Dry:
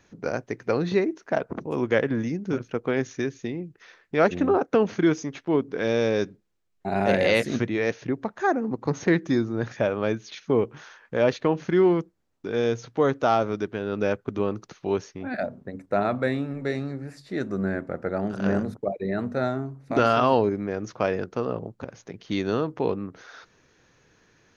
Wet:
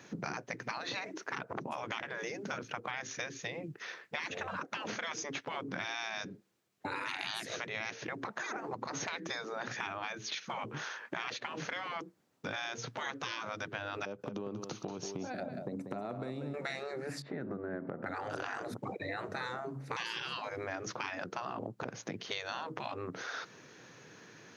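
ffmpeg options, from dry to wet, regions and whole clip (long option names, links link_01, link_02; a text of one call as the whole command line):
ffmpeg -i in.wav -filter_complex "[0:a]asettb=1/sr,asplit=3[link_01][link_02][link_03];[link_01]atrim=end=14.054[link_04];[link_02]atrim=start=14.05:end=16.54,asetpts=PTS-STARTPTS,afade=type=in:duration=0.004:curve=qsin,afade=type=out:start_time=2.486:duration=0.004:curve=qsin,equalizer=frequency=1800:width_type=o:width=0.72:gain=-11,acompressor=threshold=-36dB:ratio=10:attack=3.2:release=140:knee=1:detection=peak,aecho=1:1:187:0.335,atrim=end_sample=109809[link_05];[link_03]atrim=start=16.536[link_06];[link_04][link_05]acrossfade=duration=0.004:curve1=hsin:curve2=qsin[link_07];[link_07][link_06]acrossfade=duration=0.004:curve1=qsin:curve2=hsin,asettb=1/sr,asplit=3[link_08][link_09][link_10];[link_08]atrim=end=17.224[link_11];[link_09]atrim=start=17.22:end=18.06,asetpts=PTS-STARTPTS,afade=type=in:duration=0.004:curve=qsin,afade=type=out:start_time=0.836:duration=0.004:curve=qsin,lowpass=1500,acompressor=threshold=-34dB:ratio=6:attack=3.2:release=140:knee=1:detection=peak[link_12];[link_10]atrim=start=18.056[link_13];[link_11][link_12]acrossfade=duration=0.004:curve1=hsin:curve2=qsin[link_14];[link_14][link_13]acrossfade=duration=0.004:curve1=qsin:curve2=hsin,afftfilt=real='re*lt(hypot(re,im),0.1)':imag='im*lt(hypot(re,im),0.1)':win_size=1024:overlap=0.75,highpass=frequency=120:width=0.5412,highpass=frequency=120:width=1.3066,acompressor=threshold=-42dB:ratio=6,volume=6.5dB" out.wav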